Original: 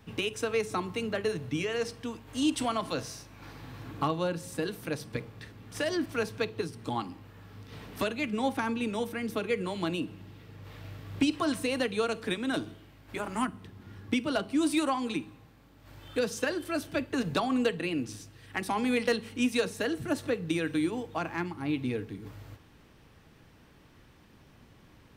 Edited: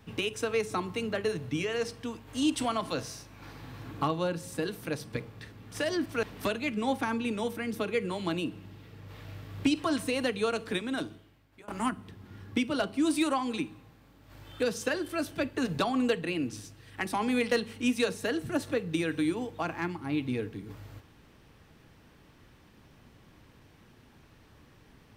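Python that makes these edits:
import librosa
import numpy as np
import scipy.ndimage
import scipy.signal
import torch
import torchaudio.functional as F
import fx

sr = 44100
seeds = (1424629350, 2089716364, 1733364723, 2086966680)

y = fx.edit(x, sr, fx.cut(start_s=6.23, length_s=1.56),
    fx.fade_out_to(start_s=12.29, length_s=0.95, floor_db=-22.5), tone=tone)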